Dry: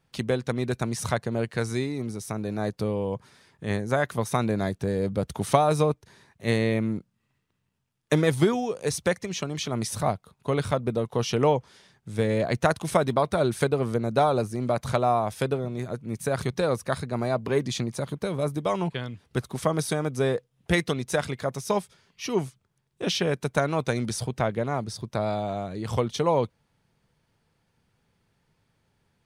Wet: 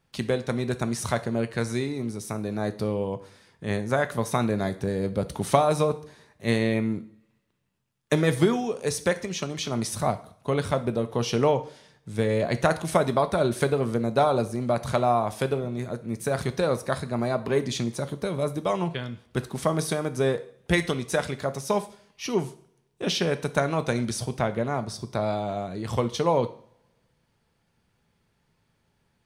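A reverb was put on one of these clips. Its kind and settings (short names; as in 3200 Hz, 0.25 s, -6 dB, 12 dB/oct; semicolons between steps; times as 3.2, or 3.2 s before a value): two-slope reverb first 0.49 s, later 1.5 s, from -25 dB, DRR 10 dB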